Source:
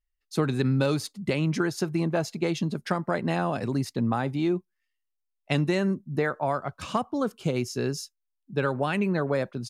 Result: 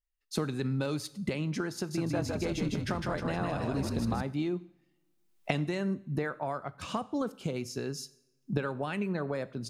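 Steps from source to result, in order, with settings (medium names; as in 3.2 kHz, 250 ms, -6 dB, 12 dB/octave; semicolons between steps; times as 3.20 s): recorder AGC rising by 25 dB/s; 1.75–4.22 s: frequency-shifting echo 156 ms, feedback 56%, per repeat -38 Hz, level -3 dB; two-slope reverb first 0.62 s, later 1.9 s, from -21 dB, DRR 15.5 dB; trim -8 dB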